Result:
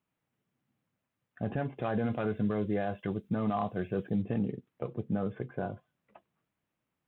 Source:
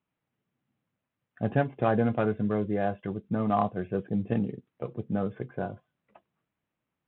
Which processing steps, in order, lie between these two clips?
0:01.78–0:04.22: high-shelf EQ 3,100 Hz +9.5 dB
brickwall limiter −22 dBFS, peak gain reduction 10 dB

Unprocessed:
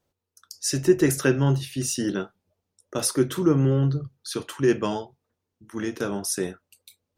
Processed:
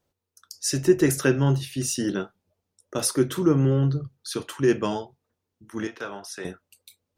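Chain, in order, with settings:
0:05.87–0:06.45: three-way crossover with the lows and the highs turned down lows −15 dB, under 570 Hz, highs −16 dB, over 4,400 Hz

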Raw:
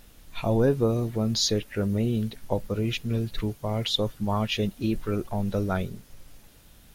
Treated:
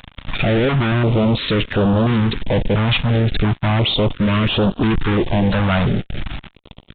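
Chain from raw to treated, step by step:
fuzz pedal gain 45 dB, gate −46 dBFS
downsampling to 8,000 Hz
notch on a step sequencer 2.9 Hz 380–2,100 Hz

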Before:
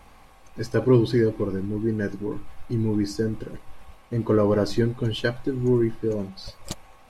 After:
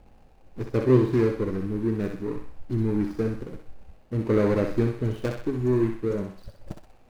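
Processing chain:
running median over 41 samples
feedback echo with a high-pass in the loop 63 ms, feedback 49%, high-pass 600 Hz, level −4 dB
level −1 dB

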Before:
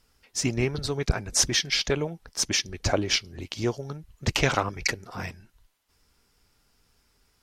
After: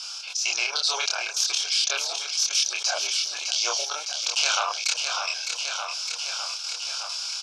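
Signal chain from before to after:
phase distortion by the signal itself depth 0.12 ms
first difference
automatic gain control gain up to 14.5 dB
transient designer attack −6 dB, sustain −1 dB
elliptic band-pass filter 620–5,900 Hz, stop band 60 dB
gate pattern "xx.x.xx.xx" 165 BPM −12 dB
Butterworth band-reject 1,900 Hz, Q 2.5
double-tracking delay 27 ms −2.5 dB
repeating echo 609 ms, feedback 53%, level −17.5 dB
envelope flattener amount 70%
level +3.5 dB

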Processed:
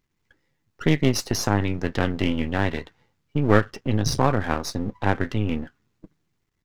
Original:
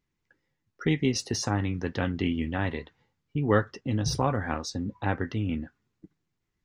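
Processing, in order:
gain on one half-wave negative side −12 dB
level +7.5 dB

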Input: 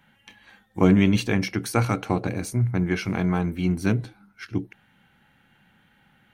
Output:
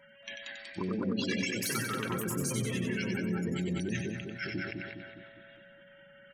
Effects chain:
gate on every frequency bin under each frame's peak −15 dB strong
Chebyshev band-stop filter 400–1,000 Hz, order 2
tilt shelving filter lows −6 dB, about 830 Hz
mains-hum notches 50/100/150/200 Hz
comb filter 5.3 ms, depth 38%
downward compressor, threshold −34 dBFS, peak gain reduction 15.5 dB
steady tone 560 Hz −59 dBFS
delay with pitch and tempo change per echo 228 ms, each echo +3 semitones, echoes 2
echo with a time of its own for lows and highs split 1,900 Hz, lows 205 ms, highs 93 ms, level −4.5 dB
level that may fall only so fast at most 44 dB per second

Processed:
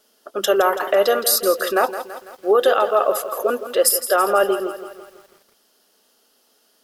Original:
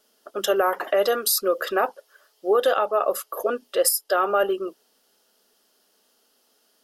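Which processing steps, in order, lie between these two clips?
feedback echo at a low word length 166 ms, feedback 55%, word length 8 bits, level −11.5 dB
level +4 dB

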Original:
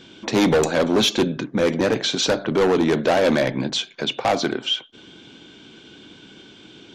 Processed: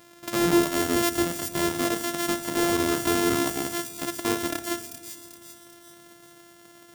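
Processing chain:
samples sorted by size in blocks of 128 samples
high-shelf EQ 6,100 Hz +6 dB
noise reduction from a noise print of the clip's start 7 dB
low-shelf EQ 130 Hz −10 dB
delay with a high-pass on its return 391 ms, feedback 47%, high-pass 5,100 Hz, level −4 dB
rectangular room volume 3,100 cubic metres, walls mixed, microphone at 0.55 metres

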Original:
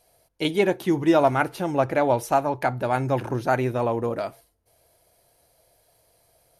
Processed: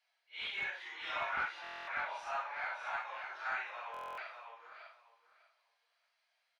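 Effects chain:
random phases in long frames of 200 ms
Bessel high-pass filter 2,200 Hz, order 4
hard clipping −30.5 dBFS, distortion −16 dB
head-to-tape spacing loss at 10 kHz 42 dB
repeating echo 599 ms, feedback 18%, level −6 dB
buffer that repeats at 0:01.62/0:03.92, samples 1,024, times 10
level +6.5 dB

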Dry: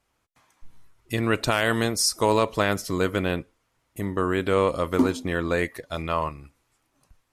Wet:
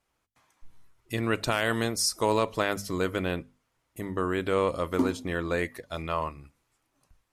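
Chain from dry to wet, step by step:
mains-hum notches 50/100/150/200/250 Hz
level −4 dB

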